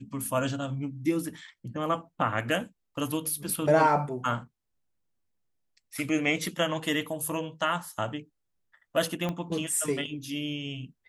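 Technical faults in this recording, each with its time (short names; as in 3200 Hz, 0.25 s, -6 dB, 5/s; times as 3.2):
9.29 pop -18 dBFS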